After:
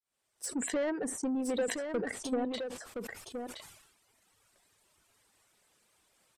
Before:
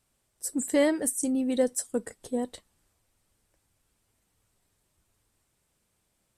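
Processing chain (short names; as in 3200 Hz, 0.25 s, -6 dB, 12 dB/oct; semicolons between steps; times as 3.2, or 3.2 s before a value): opening faded in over 0.93 s; reverb removal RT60 1.5 s; treble ducked by the level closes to 1400 Hz, closed at -27.5 dBFS; compressor 8:1, threshold -29 dBFS, peak gain reduction 9.5 dB; overdrive pedal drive 19 dB, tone 6200 Hz, clips at -20.5 dBFS; echo 1.019 s -6.5 dB; sustainer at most 64 dB/s; gain -3 dB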